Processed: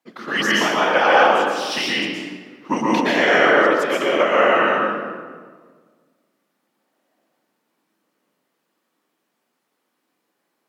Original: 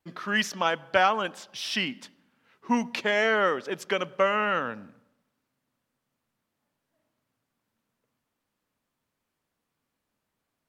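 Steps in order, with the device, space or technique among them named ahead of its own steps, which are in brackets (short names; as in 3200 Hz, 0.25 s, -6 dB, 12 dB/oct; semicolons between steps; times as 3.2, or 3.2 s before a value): whispering ghost (whisperiser; HPF 210 Hz 24 dB/oct; reverb RT60 1.6 s, pre-delay 0.11 s, DRR -5.5 dB); gain +3 dB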